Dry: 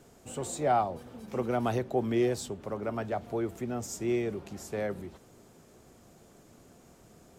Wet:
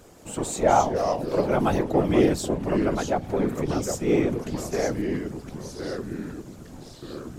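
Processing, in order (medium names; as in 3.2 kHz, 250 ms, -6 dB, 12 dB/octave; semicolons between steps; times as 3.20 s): ever faster or slower copies 168 ms, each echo -3 st, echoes 3, each echo -6 dB; whisper effect; trim +6.5 dB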